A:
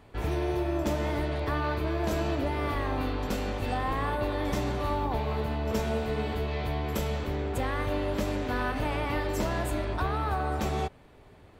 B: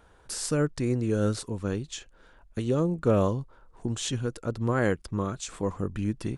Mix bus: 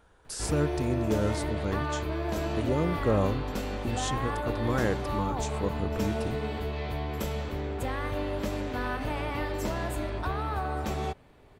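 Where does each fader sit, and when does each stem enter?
−2.0, −3.0 decibels; 0.25, 0.00 seconds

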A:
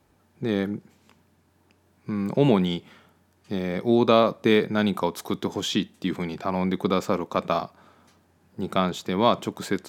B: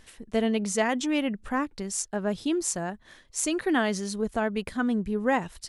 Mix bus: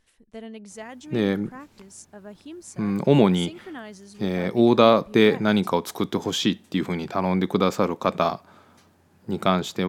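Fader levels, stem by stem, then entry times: +2.5, −13.5 decibels; 0.70, 0.00 seconds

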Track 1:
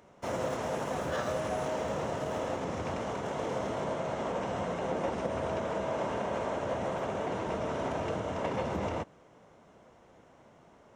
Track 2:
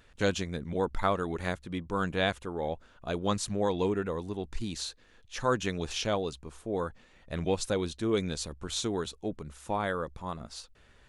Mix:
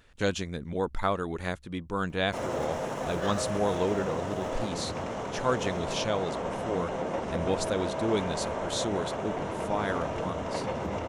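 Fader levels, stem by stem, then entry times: +0.5, 0.0 decibels; 2.10, 0.00 seconds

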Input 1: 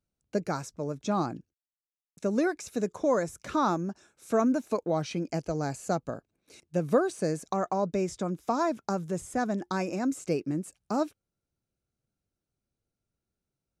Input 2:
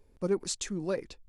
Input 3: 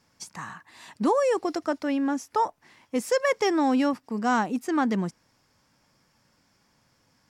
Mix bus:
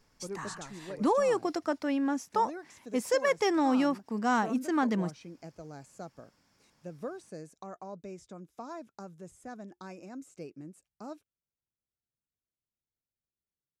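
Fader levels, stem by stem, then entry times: −15.0, −11.5, −3.5 decibels; 0.10, 0.00, 0.00 seconds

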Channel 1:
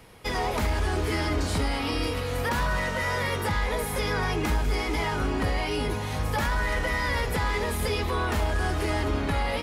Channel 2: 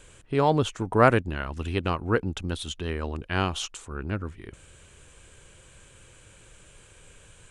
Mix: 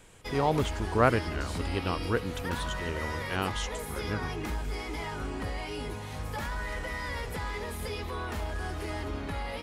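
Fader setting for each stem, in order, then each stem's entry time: −8.5, −5.0 decibels; 0.00, 0.00 seconds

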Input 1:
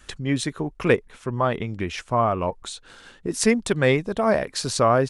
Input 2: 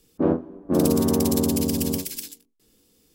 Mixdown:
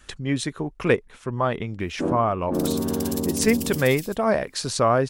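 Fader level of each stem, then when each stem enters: −1.0, −4.5 decibels; 0.00, 1.80 seconds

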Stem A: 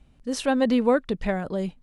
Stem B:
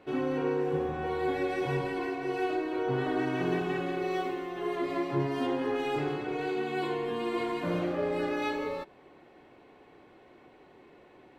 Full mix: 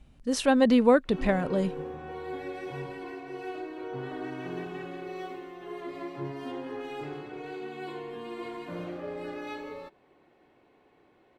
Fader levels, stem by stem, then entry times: +0.5, −7.0 decibels; 0.00, 1.05 seconds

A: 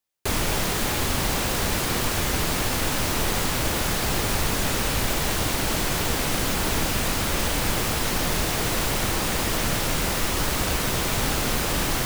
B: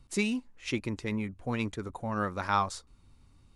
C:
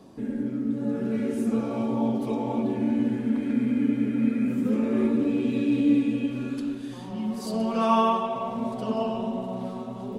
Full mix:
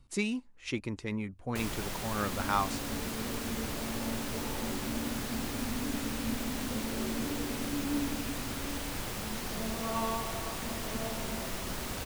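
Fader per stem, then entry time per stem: −13.5, −2.5, −13.0 decibels; 1.30, 0.00, 2.05 seconds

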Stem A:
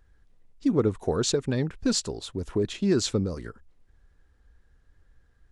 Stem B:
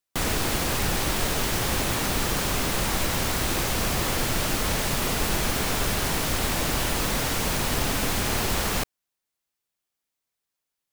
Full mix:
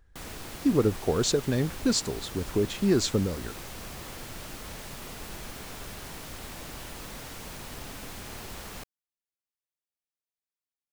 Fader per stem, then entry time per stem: 0.0, −15.5 decibels; 0.00, 0.00 seconds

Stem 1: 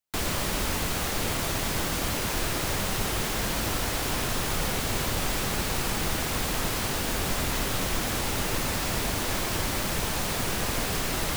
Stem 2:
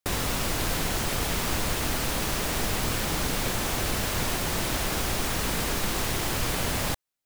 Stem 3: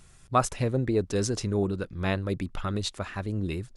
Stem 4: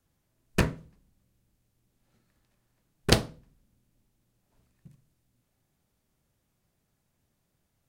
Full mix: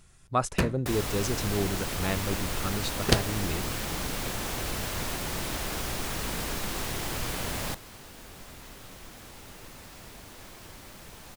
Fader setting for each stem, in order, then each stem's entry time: −18.5, −5.0, −3.0, −1.5 decibels; 1.10, 0.80, 0.00, 0.00 seconds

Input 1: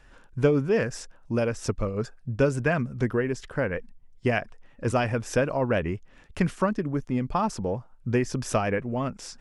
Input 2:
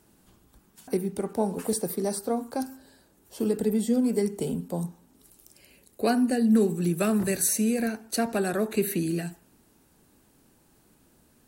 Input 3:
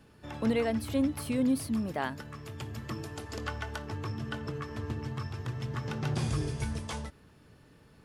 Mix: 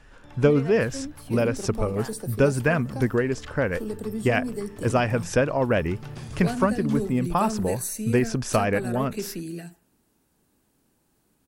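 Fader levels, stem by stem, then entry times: +2.5, −6.5, −7.0 decibels; 0.00, 0.40, 0.00 seconds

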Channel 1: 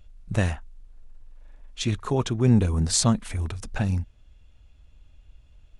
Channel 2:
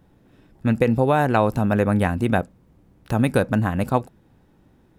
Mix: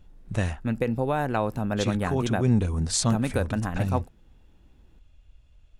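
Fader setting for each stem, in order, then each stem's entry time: −3.0, −7.5 decibels; 0.00, 0.00 seconds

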